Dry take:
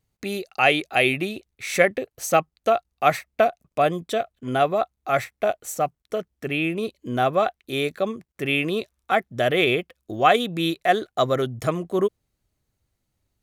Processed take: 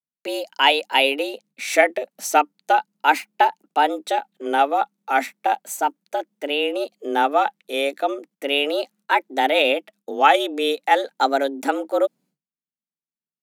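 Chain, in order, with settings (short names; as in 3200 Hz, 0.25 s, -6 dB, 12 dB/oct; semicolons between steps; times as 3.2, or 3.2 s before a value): vibrato 0.36 Hz 95 cents; expander -48 dBFS; frequency shift +140 Hz; gain +2 dB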